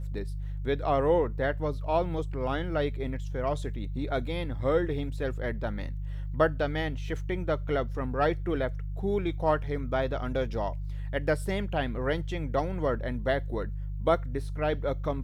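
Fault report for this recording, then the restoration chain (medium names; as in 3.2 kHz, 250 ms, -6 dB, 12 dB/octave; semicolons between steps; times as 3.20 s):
hum 50 Hz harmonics 3 -34 dBFS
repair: de-hum 50 Hz, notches 3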